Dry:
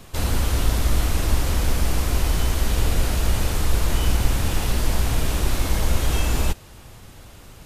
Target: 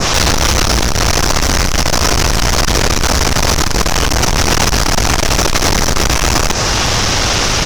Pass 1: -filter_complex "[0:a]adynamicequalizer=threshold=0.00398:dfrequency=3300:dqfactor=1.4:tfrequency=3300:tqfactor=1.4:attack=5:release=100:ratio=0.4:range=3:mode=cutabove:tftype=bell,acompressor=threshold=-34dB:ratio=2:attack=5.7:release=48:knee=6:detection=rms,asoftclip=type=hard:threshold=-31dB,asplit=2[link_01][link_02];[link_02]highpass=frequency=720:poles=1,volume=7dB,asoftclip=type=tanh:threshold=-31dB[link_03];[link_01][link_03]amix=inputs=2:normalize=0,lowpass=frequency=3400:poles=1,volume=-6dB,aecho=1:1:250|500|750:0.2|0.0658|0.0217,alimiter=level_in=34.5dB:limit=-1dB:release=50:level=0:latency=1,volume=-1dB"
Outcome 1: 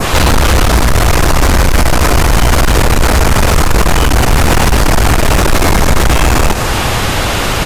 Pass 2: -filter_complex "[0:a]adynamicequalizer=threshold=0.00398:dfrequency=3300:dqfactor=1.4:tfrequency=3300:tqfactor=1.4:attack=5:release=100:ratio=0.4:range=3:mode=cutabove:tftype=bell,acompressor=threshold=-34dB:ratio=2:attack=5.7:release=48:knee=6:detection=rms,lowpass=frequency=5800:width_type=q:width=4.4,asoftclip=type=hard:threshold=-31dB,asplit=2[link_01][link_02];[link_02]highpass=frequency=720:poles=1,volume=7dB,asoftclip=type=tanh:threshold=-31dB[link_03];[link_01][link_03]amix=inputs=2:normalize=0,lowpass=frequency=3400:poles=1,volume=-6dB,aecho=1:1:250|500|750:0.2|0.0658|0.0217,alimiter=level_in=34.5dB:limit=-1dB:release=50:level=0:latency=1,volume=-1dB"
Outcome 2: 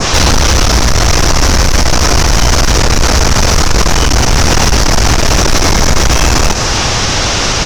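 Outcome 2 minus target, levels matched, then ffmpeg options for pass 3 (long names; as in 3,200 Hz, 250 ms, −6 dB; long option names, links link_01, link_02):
hard clipping: distortion −4 dB
-filter_complex "[0:a]adynamicequalizer=threshold=0.00398:dfrequency=3300:dqfactor=1.4:tfrequency=3300:tqfactor=1.4:attack=5:release=100:ratio=0.4:range=3:mode=cutabove:tftype=bell,acompressor=threshold=-34dB:ratio=2:attack=5.7:release=48:knee=6:detection=rms,lowpass=frequency=5800:width_type=q:width=4.4,asoftclip=type=hard:threshold=-40.5dB,asplit=2[link_01][link_02];[link_02]highpass=frequency=720:poles=1,volume=7dB,asoftclip=type=tanh:threshold=-31dB[link_03];[link_01][link_03]amix=inputs=2:normalize=0,lowpass=frequency=3400:poles=1,volume=-6dB,aecho=1:1:250|500|750:0.2|0.0658|0.0217,alimiter=level_in=34.5dB:limit=-1dB:release=50:level=0:latency=1,volume=-1dB"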